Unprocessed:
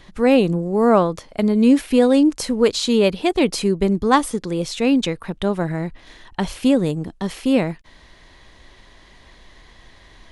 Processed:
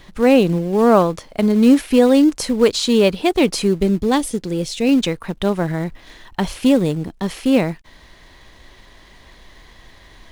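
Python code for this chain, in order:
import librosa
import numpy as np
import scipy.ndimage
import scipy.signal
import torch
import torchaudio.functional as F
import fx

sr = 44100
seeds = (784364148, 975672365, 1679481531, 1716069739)

p1 = fx.peak_eq(x, sr, hz=1200.0, db=-12.5, octaves=1.1, at=(3.8, 4.89))
p2 = fx.quant_companded(p1, sr, bits=4)
y = p1 + (p2 * 10.0 ** (-11.5 / 20.0))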